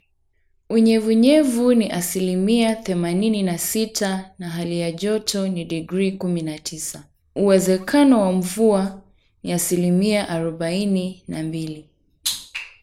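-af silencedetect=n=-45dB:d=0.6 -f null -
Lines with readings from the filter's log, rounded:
silence_start: 0.00
silence_end: 0.70 | silence_duration: 0.70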